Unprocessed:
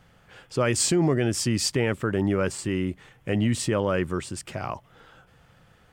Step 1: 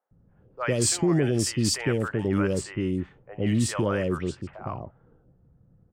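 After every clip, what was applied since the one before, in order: three bands offset in time mids, highs, lows 60/110 ms, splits 670/2800 Hz; level-controlled noise filter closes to 320 Hz, open at -21 dBFS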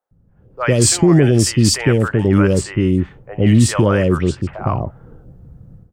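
bass shelf 130 Hz +7 dB; level rider gain up to 15 dB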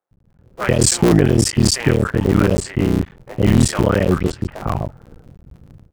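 cycle switcher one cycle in 3, muted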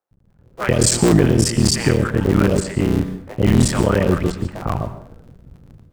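plate-style reverb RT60 0.53 s, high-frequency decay 0.75×, pre-delay 105 ms, DRR 11 dB; trim -1 dB

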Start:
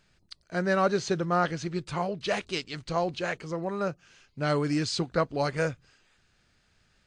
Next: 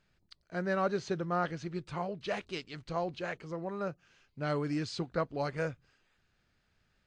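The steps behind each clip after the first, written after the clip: low-pass 3.5 kHz 6 dB/octave; trim -6 dB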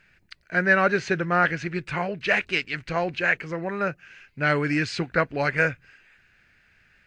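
high-order bell 2 kHz +12 dB 1.1 oct; trim +8 dB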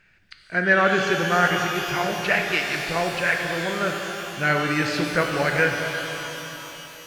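pitch-shifted reverb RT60 3.6 s, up +12 st, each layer -8 dB, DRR 2 dB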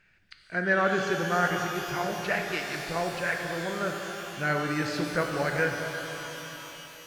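dynamic bell 2.6 kHz, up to -6 dB, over -37 dBFS, Q 1.4; trim -5 dB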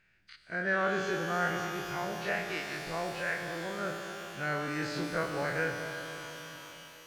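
every event in the spectrogram widened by 60 ms; trim -8.5 dB

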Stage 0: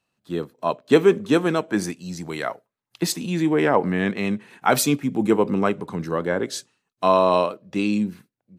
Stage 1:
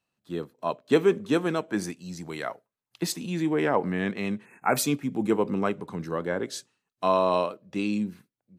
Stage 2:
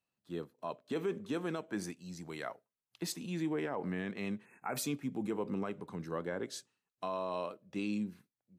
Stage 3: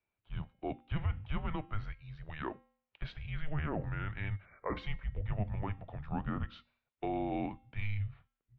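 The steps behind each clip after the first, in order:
spectral selection erased 4.45–4.77 s, 2.7–6.3 kHz; trim -5.5 dB
peak limiter -19 dBFS, peak gain reduction 10 dB; trim -8 dB
de-hum 274.8 Hz, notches 36; mistuned SSB -310 Hz 190–3400 Hz; trim +2.5 dB

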